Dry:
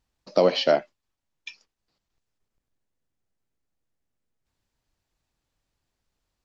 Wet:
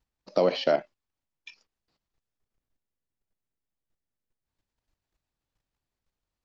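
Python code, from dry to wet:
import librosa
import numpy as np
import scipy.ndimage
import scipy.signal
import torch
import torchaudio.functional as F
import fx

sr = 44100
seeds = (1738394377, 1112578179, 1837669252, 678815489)

y = fx.level_steps(x, sr, step_db=11)
y = fx.high_shelf(y, sr, hz=5700.0, db=-5.5)
y = F.gain(torch.from_numpy(y), 1.5).numpy()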